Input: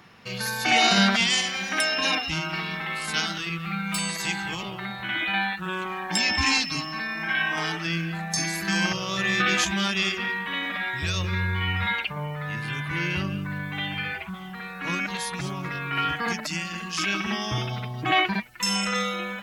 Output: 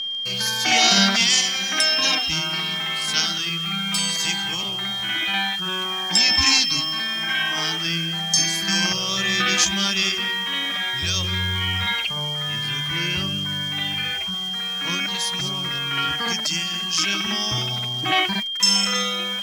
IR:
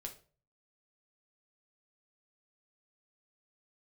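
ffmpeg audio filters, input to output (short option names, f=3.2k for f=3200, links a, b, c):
-af "acrusher=bits=8:dc=4:mix=0:aa=0.000001,aeval=exprs='val(0)+0.0398*sin(2*PI*3200*n/s)':c=same,equalizer=f=5.7k:t=o:w=1:g=10.5"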